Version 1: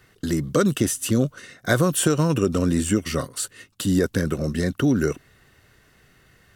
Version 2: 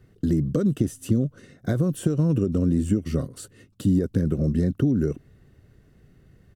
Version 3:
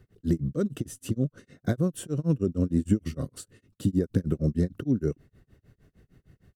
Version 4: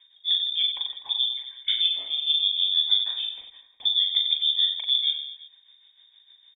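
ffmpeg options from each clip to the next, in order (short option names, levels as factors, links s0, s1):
-af "acompressor=threshold=0.0891:ratio=6,firequalizer=gain_entry='entry(170,0);entry(940,-16);entry(2100,-18)':delay=0.05:min_phase=1,volume=1.88"
-af "tremolo=f=6.5:d=0.99"
-af "lowpass=f=3100:t=q:w=0.5098,lowpass=f=3100:t=q:w=0.6013,lowpass=f=3100:t=q:w=0.9,lowpass=f=3100:t=q:w=2.563,afreqshift=-3700,aecho=1:1:40|92|159.6|247.5|361.7:0.631|0.398|0.251|0.158|0.1"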